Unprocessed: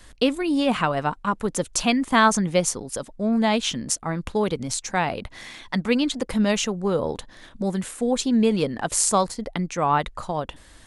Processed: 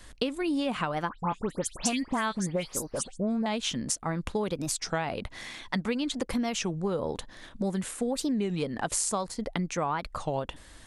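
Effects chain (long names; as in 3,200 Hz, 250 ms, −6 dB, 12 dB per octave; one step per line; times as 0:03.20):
downward compressor 10 to 1, threshold −24 dBFS, peak gain reduction 13 dB
0:01.11–0:03.46: all-pass dispersion highs, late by 111 ms, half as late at 2,900 Hz
wow of a warped record 33 1/3 rpm, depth 250 cents
level −1.5 dB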